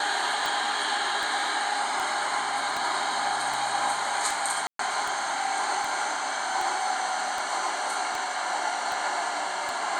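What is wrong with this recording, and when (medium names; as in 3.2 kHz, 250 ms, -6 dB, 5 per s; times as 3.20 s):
tick 78 rpm
4.67–4.79 s: dropout 123 ms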